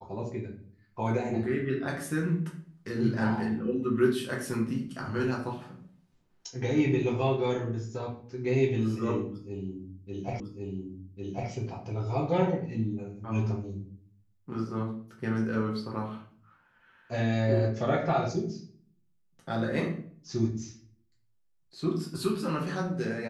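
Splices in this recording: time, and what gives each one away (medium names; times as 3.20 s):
10.40 s: repeat of the last 1.1 s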